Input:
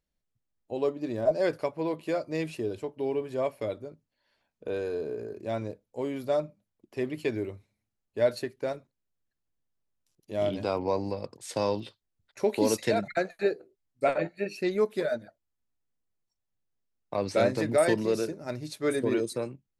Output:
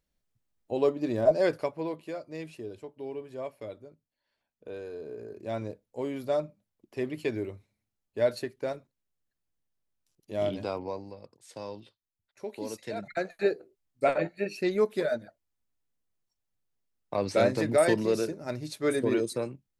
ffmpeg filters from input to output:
ffmpeg -i in.wav -af "volume=22.5dB,afade=type=out:start_time=1.24:duration=0.89:silence=0.281838,afade=type=in:start_time=4.98:duration=0.65:silence=0.446684,afade=type=out:start_time=10.46:duration=0.6:silence=0.281838,afade=type=in:start_time=12.88:duration=0.57:silence=0.237137" out.wav

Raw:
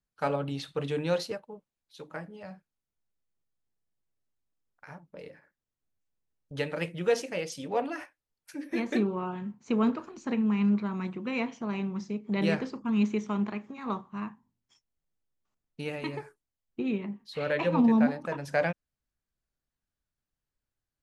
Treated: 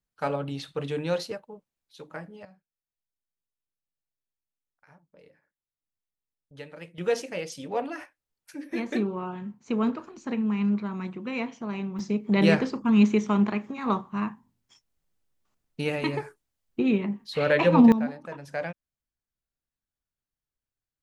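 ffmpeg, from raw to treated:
ffmpeg -i in.wav -af "asetnsamples=nb_out_samples=441:pad=0,asendcmd='2.45 volume volume -10.5dB;6.98 volume volume 0dB;11.99 volume volume 7dB;17.92 volume volume -5dB',volume=0.5dB" out.wav

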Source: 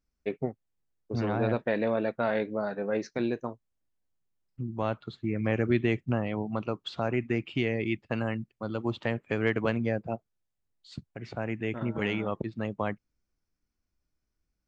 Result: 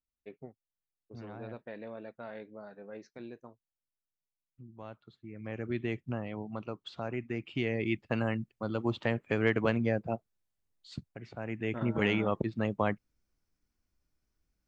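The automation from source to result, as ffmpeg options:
ffmpeg -i in.wav -af "volume=10dB,afade=type=in:start_time=5.31:duration=0.59:silence=0.375837,afade=type=in:start_time=7.33:duration=0.68:silence=0.446684,afade=type=out:start_time=11.02:duration=0.28:silence=0.375837,afade=type=in:start_time=11.3:duration=0.68:silence=0.298538" out.wav

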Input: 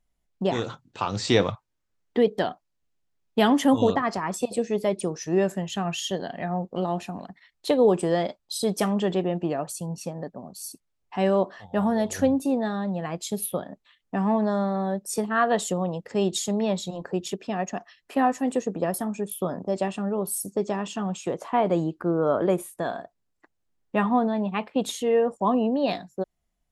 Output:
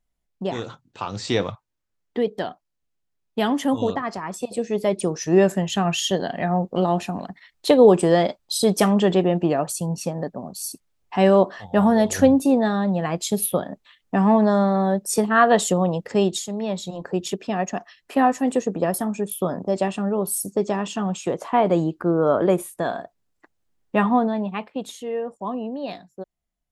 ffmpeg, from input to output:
ffmpeg -i in.wav -af "volume=14.5dB,afade=type=in:start_time=4.42:duration=0.93:silence=0.375837,afade=type=out:start_time=16.11:duration=0.37:silence=0.298538,afade=type=in:start_time=16.48:duration=0.78:silence=0.398107,afade=type=out:start_time=24.06:duration=0.8:silence=0.316228" out.wav

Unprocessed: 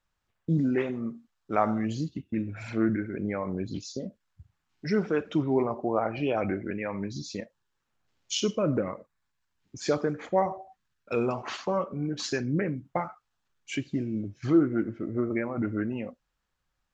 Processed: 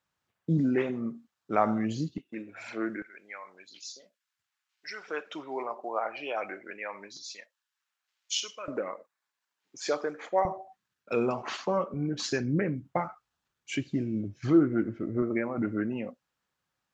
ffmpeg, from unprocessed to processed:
ffmpeg -i in.wav -af "asetnsamples=nb_out_samples=441:pad=0,asendcmd='2.18 highpass f 440;3.02 highpass f 1500;5.08 highpass f 710;7.17 highpass f 1400;8.68 highpass f 470;10.45 highpass f 140;11.94 highpass f 47;15.22 highpass f 130',highpass=110" out.wav

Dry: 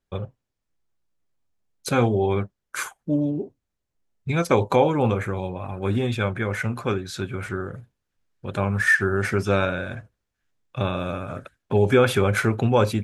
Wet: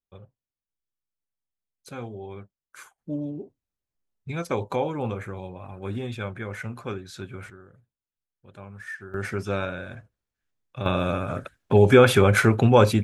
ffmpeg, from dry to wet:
ffmpeg -i in.wav -af "asetnsamples=nb_out_samples=441:pad=0,asendcmd='2.98 volume volume -8dB;7.5 volume volume -19dB;9.14 volume volume -6.5dB;10.86 volume volume 3dB',volume=-16.5dB" out.wav

